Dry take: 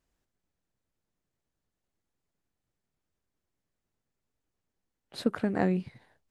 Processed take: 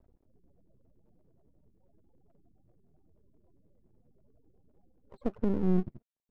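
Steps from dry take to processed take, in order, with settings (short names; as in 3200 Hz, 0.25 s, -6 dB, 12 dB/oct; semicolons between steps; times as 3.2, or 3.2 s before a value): high shelf 5200 Hz +11 dB; in parallel at -1.5 dB: compressor, threshold -35 dBFS, peak gain reduction 14 dB; on the sum: limiter -19.5 dBFS, peak gain reduction 8.5 dB; upward compressor, threshold -46 dBFS; loudest bins only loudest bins 16; low-pass sweep 710 Hz -> 210 Hz, 4.88–5.65; half-wave rectifier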